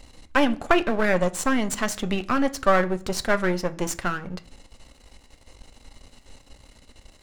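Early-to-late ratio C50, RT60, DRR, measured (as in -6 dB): 19.5 dB, 0.50 s, 10.0 dB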